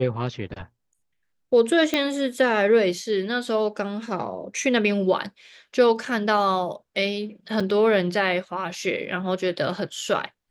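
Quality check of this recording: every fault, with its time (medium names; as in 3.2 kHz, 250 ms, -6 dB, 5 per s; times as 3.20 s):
1.94 s: pop -8 dBFS
7.60–7.61 s: dropout 5.3 ms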